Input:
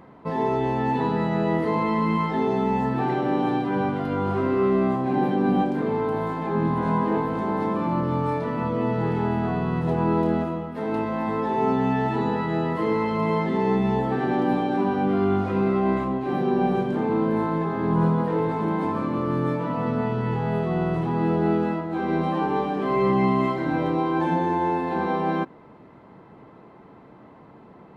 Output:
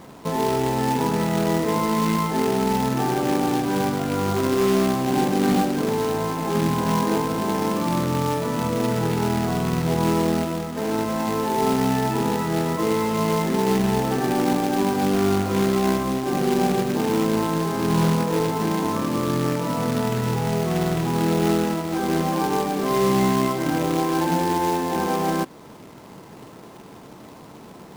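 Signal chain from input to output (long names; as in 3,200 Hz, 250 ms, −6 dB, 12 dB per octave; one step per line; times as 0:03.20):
Bessel low-pass filter 1,900 Hz
in parallel at −2 dB: downward compressor 12 to 1, threshold −33 dBFS, peak gain reduction 16.5 dB
on the sum: log-companded quantiser 4 bits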